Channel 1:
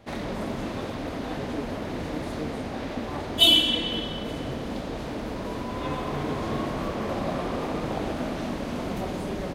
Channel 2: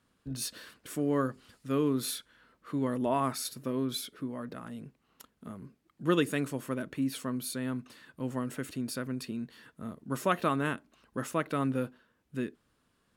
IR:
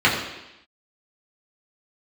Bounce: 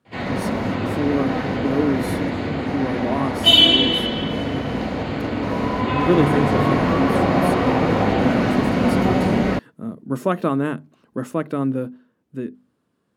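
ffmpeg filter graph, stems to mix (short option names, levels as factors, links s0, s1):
-filter_complex "[0:a]adelay=50,volume=0.891,asplit=2[s0][s1];[s1]volume=0.237[s2];[1:a]highpass=140,tiltshelf=f=820:g=7,bandreject=f=50:t=h:w=6,bandreject=f=100:t=h:w=6,bandreject=f=150:t=h:w=6,bandreject=f=200:t=h:w=6,bandreject=f=250:t=h:w=6,volume=1.33,asplit=2[s3][s4];[s4]apad=whole_len=422920[s5];[s0][s5]sidechaingate=range=0.0224:threshold=0.002:ratio=16:detection=peak[s6];[2:a]atrim=start_sample=2205[s7];[s2][s7]afir=irnorm=-1:irlink=0[s8];[s6][s3][s8]amix=inputs=3:normalize=0,dynaudnorm=f=200:g=17:m=1.58"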